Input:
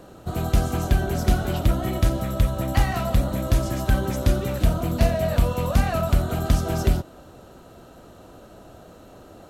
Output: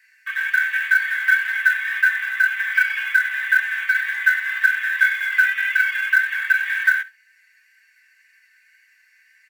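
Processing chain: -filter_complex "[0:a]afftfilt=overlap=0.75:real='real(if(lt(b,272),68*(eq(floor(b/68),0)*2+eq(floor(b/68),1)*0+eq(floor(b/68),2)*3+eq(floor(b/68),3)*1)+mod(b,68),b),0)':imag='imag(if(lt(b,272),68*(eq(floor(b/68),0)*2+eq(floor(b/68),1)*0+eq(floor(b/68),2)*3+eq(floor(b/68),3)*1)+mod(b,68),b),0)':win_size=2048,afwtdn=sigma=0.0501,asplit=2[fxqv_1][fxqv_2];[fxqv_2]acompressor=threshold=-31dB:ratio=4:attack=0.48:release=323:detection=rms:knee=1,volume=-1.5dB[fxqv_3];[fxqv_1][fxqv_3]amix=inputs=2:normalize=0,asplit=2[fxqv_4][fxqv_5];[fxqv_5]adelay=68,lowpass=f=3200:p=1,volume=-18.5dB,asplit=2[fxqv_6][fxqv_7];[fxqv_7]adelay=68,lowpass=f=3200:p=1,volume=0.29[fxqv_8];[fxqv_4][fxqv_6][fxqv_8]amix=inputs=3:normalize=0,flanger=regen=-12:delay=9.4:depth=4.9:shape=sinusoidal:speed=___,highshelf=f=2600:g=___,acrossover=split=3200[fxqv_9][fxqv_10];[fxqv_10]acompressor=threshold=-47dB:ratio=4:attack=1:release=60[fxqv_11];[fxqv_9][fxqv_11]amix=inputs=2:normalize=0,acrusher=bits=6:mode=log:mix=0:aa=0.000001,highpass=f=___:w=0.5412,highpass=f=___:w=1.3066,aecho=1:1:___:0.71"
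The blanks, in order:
1.9, 4, 1200, 1200, 4.5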